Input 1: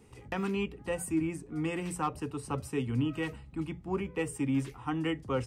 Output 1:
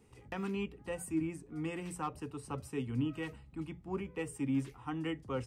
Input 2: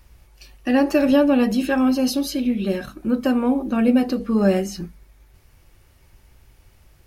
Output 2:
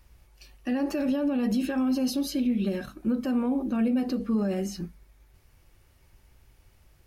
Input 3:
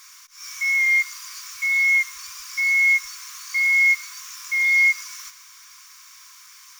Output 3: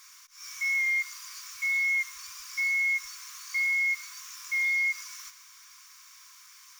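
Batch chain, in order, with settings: limiter -16 dBFS; dynamic EQ 220 Hz, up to +4 dB, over -32 dBFS, Q 1.1; gain -6 dB

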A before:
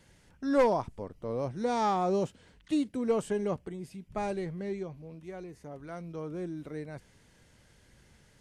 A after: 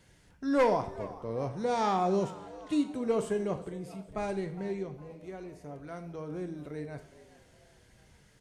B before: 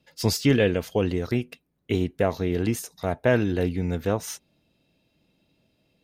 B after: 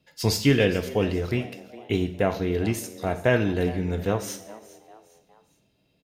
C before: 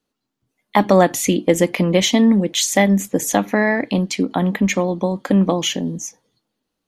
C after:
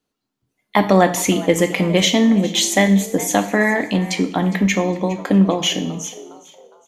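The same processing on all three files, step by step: frequency-shifting echo 0.41 s, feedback 42%, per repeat +110 Hz, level -18.5 dB; dynamic EQ 2600 Hz, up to +3 dB, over -36 dBFS, Q 0.88; two-slope reverb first 0.57 s, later 1.8 s, from -19 dB, DRR 7 dB; gain -1 dB

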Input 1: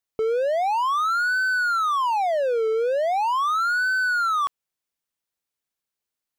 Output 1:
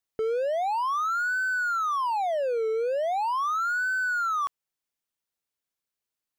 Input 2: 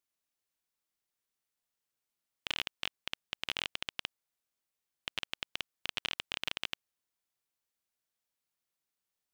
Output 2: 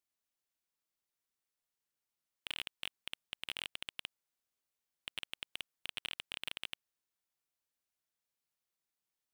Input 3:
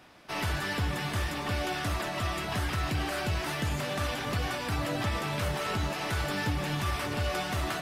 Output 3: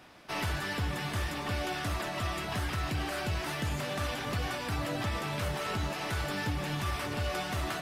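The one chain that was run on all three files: in parallel at +0.5 dB: vocal rider 0.5 s; on the sum: hard clip -16 dBFS; gain -8.5 dB

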